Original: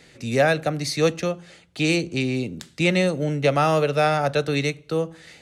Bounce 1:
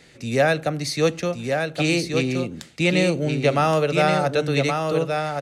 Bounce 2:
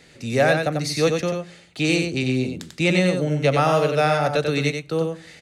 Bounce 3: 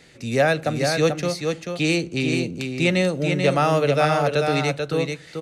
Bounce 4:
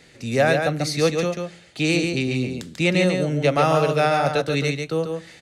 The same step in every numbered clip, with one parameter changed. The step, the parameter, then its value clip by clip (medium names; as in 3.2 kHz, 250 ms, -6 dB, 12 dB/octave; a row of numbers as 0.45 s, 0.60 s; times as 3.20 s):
delay, time: 1122 ms, 93 ms, 438 ms, 141 ms